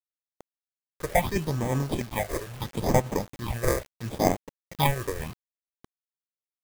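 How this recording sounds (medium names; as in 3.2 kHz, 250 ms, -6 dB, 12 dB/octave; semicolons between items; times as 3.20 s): aliases and images of a low sample rate 1.4 kHz, jitter 0%; phasing stages 6, 0.74 Hz, lowest notch 210–4200 Hz; tremolo triangle 5.2 Hz, depth 65%; a quantiser's noise floor 8-bit, dither none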